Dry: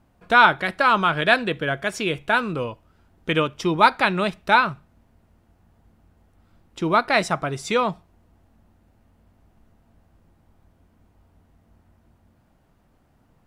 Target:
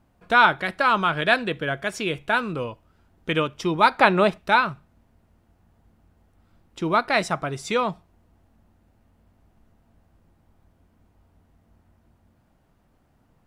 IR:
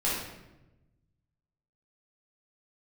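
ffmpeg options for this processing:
-filter_complex "[0:a]asettb=1/sr,asplit=3[a][b][c];[a]atrim=end=3.984[d];[b]atrim=start=3.98:end=4.38,asetpts=PTS-STARTPTS,afade=t=in:d=0.004:c=qsin,afade=t=out:st=0.396:d=0.004:c=qsin,equalizer=f=590:w=0.43:g=8.5[e];[c]atrim=start=4.376[f];[d][e]acrossfade=d=0.004:c1=hsin:c2=qsin[g];[g][f]acrossfade=d=0.004:c1=qsin:c2=hsin,volume=-2dB"

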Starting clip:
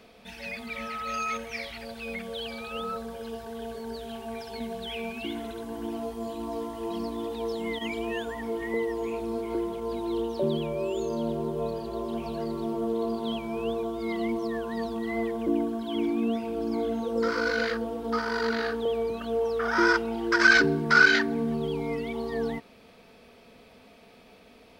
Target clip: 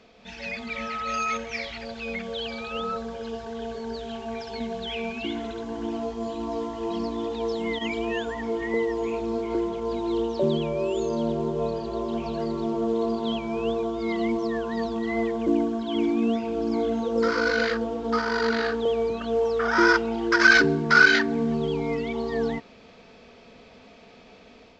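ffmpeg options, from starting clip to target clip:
-af "dynaudnorm=f=170:g=3:m=5dB,volume=-1.5dB" -ar 16000 -c:a pcm_mulaw

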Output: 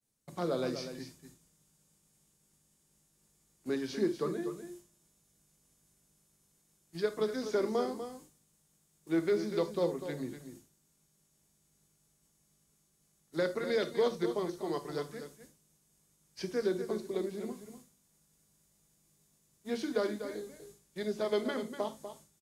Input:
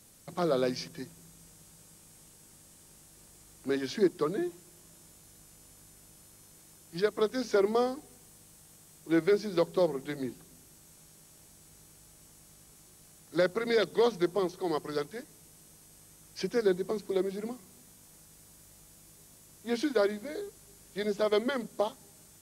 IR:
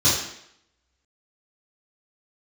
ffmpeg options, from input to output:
-filter_complex "[0:a]aecho=1:1:245:0.316,agate=range=-33dB:threshold=-46dB:ratio=3:detection=peak,asplit=2[a][b];[1:a]atrim=start_sample=2205,atrim=end_sample=3969[c];[b][c]afir=irnorm=-1:irlink=0,volume=-26dB[d];[a][d]amix=inputs=2:normalize=0,volume=-5.5dB"

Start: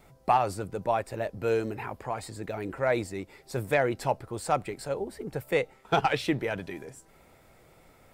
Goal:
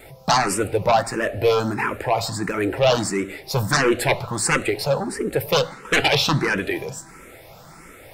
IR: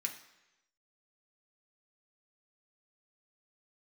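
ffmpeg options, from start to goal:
-filter_complex "[0:a]aeval=exprs='0.282*sin(PI/2*3.98*val(0)/0.282)':c=same,asplit=2[a][b];[1:a]atrim=start_sample=2205,asetrate=29547,aresample=44100[c];[b][c]afir=irnorm=-1:irlink=0,volume=-9.5dB[d];[a][d]amix=inputs=2:normalize=0,asplit=2[e][f];[f]afreqshift=1.5[g];[e][g]amix=inputs=2:normalize=1"

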